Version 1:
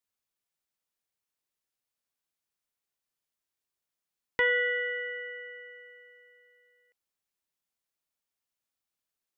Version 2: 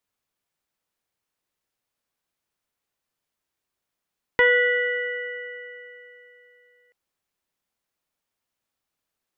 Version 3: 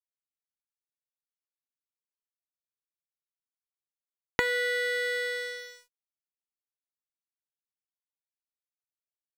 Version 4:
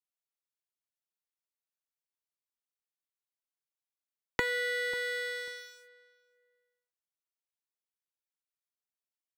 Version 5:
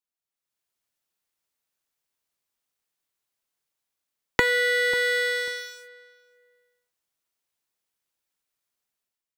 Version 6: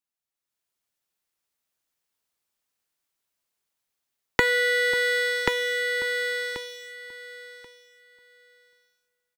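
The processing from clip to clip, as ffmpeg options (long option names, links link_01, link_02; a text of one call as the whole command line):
ffmpeg -i in.wav -af "highshelf=frequency=3000:gain=-7,volume=9dB" out.wav
ffmpeg -i in.wav -af "acompressor=threshold=-29dB:ratio=8,aeval=exprs='sgn(val(0))*max(abs(val(0))-0.0119,0)':channel_layout=same,volume=6.5dB" out.wav
ffmpeg -i in.wav -filter_complex "[0:a]acrossover=split=300|440|6900[link_01][link_02][link_03][link_04];[link_01]acrusher=bits=4:dc=4:mix=0:aa=0.000001[link_05];[link_05][link_02][link_03][link_04]amix=inputs=4:normalize=0,asplit=2[link_06][link_07];[link_07]adelay=542,lowpass=frequency=1500:poles=1,volume=-17.5dB,asplit=2[link_08][link_09];[link_09]adelay=542,lowpass=frequency=1500:poles=1,volume=0.2[link_10];[link_06][link_08][link_10]amix=inputs=3:normalize=0,volume=-3.5dB" out.wav
ffmpeg -i in.wav -af "dynaudnorm=framelen=200:gausssize=5:maxgain=11dB" out.wav
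ffmpeg -i in.wav -af "aecho=1:1:1084|2168|3252:0.668|0.12|0.0217" out.wav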